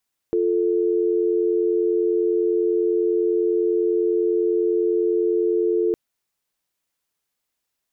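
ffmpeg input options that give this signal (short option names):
-f lavfi -i "aevalsrc='0.1*(sin(2*PI*350*t)+sin(2*PI*440*t))':d=5.61:s=44100"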